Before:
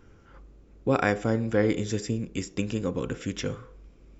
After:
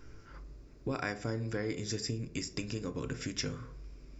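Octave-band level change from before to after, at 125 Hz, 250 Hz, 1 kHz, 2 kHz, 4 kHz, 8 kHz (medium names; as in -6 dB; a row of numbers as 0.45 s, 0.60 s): -7.0 dB, -10.0 dB, -11.5 dB, -8.0 dB, -0.5 dB, no reading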